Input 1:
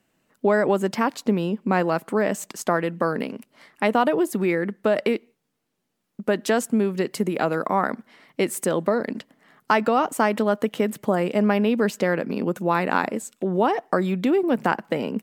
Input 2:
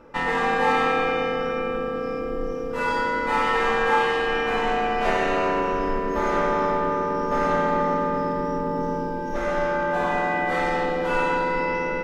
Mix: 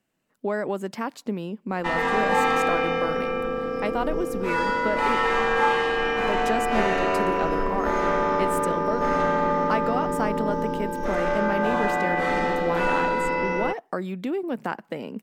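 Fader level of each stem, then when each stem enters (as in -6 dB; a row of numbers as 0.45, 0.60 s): -7.5, -0.5 dB; 0.00, 1.70 s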